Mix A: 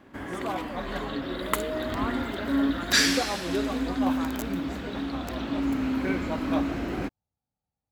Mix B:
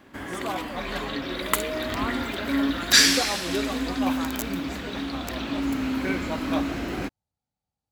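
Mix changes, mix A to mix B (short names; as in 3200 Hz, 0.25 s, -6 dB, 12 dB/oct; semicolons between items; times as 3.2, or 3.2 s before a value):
second sound: remove fixed phaser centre 1500 Hz, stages 8; master: add high shelf 2100 Hz +7.5 dB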